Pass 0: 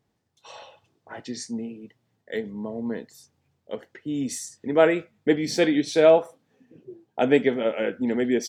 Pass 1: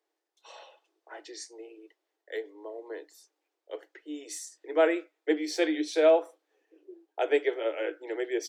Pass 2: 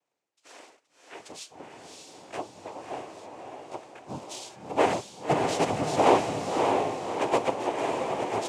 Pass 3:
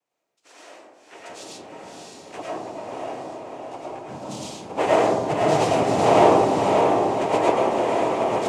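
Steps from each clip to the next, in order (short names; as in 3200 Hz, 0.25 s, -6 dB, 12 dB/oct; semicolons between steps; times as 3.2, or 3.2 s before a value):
Chebyshev high-pass 300 Hz, order 10; gain -5 dB
noise vocoder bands 4; diffused feedback echo 0.603 s, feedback 48%, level -3 dB
digital reverb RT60 1.4 s, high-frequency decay 0.25×, pre-delay 65 ms, DRR -5.5 dB; gain -1 dB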